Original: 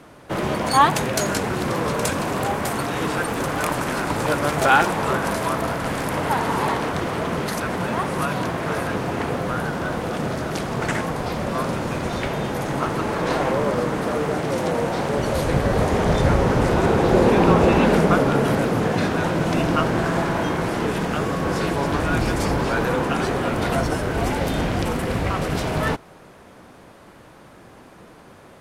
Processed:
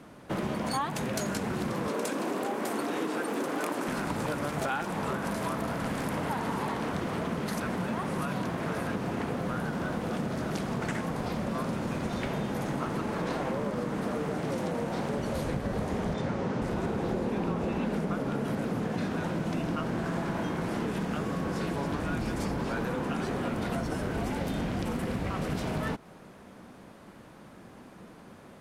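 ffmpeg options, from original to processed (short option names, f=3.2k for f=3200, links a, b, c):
-filter_complex "[0:a]asettb=1/sr,asplit=3[a][b][c];[a]atrim=end=1.884[d];[b]atrim=start=1.88:end=3.88,asetpts=PTS-STARTPTS,afade=t=in:d=0.004:c=qsin,afade=t=out:st=1.996:d=0.004:c=qsin,highpass=f=320:t=q:w=1.8[e];[c]atrim=start=3.876[f];[d][e]acrossfade=d=0.004:c1=hsin:c2=qsin[g];[g][f]acrossfade=d=0.004:c1=qsin:c2=hsin,asettb=1/sr,asplit=3[h][i][j];[h]atrim=end=16.144[k];[i]atrim=start=16.14:end=16.62,asetpts=PTS-STARTPTS,afade=t=in:d=0.004:c=qsin,afade=t=out:st=0.476:d=0.004:c=qsin,highpass=120,lowpass=7k[l];[j]atrim=start=16.616[m];[k][l]acrossfade=d=0.004:c1=hsin:c2=qsin[n];[n][m]acrossfade=d=0.004:c1=qsin:c2=hsin,equalizer=f=210:t=o:w=0.8:g=7,acompressor=threshold=-22dB:ratio=6,volume=-6dB"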